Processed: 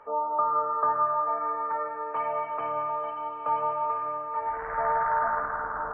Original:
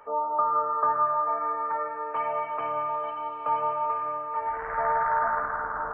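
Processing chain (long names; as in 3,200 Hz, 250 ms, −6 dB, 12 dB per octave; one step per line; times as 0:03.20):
low-pass filter 2,400 Hz 6 dB per octave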